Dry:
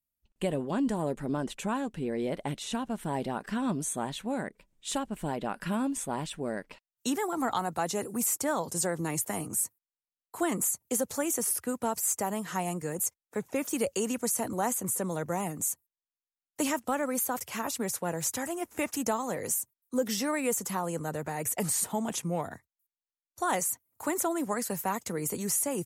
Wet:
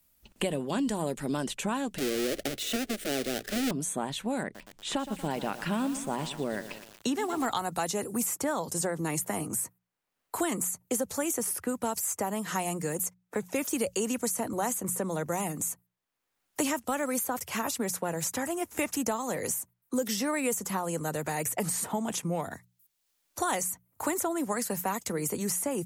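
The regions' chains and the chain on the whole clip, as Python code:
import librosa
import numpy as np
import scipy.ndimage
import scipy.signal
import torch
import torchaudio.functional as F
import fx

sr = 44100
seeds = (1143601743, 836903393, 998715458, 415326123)

y = fx.chain(x, sr, fx.halfwave_hold(),
    fx.fixed_phaser(hz=400.0, stages=4), at=(1.98, 3.71))
y = fx.chain(y, sr, fx.lowpass(hz=2500.0, slope=6),
    fx.echo_crushed(ms=117, feedback_pct=55, bits=8, wet_db=-12.5), at=(4.43, 7.46))
y = fx.hum_notches(y, sr, base_hz=60, count=3)
y = fx.band_squash(y, sr, depth_pct=70)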